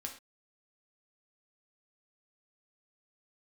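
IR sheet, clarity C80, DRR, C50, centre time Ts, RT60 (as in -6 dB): 13.5 dB, 1.5 dB, 9.0 dB, 16 ms, not exponential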